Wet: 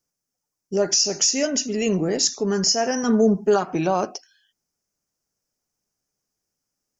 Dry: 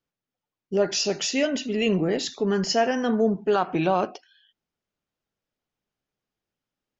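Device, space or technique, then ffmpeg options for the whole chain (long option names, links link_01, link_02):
over-bright horn tweeter: -filter_complex "[0:a]asettb=1/sr,asplit=3[link_01][link_02][link_03];[link_01]atrim=end=3.034[link_04];[link_02]atrim=start=3.03:end=3.65,asetpts=PTS-STARTPTS,afade=type=in:duration=0.004:curve=qsin,afade=type=out:start_time=0.616:duration=0.004:curve=qsin,aecho=1:1:4.9:0.76,atrim=end_sample=27342[link_05];[link_03]atrim=start=3.646[link_06];[link_04][link_05]acrossfade=duration=0.004:curve1=hsin:curve2=qsin[link_07];[link_07][link_06]acrossfade=duration=0.004:curve1=qsin:curve2=hsin,highshelf=frequency=4500:width_type=q:width=3:gain=8.5,alimiter=limit=-9.5dB:level=0:latency=1:release=181,volume=1dB"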